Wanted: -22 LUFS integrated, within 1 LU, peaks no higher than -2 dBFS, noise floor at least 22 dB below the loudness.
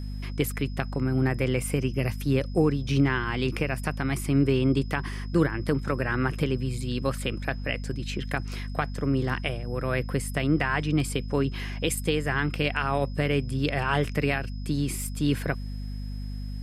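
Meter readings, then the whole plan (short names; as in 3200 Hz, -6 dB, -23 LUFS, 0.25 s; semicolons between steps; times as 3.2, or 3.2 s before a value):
hum 50 Hz; harmonics up to 250 Hz; hum level -31 dBFS; steady tone 5100 Hz; tone level -52 dBFS; loudness -27.5 LUFS; peak -8.0 dBFS; loudness target -22.0 LUFS
-> notches 50/100/150/200/250 Hz; notch 5100 Hz, Q 30; gain +5.5 dB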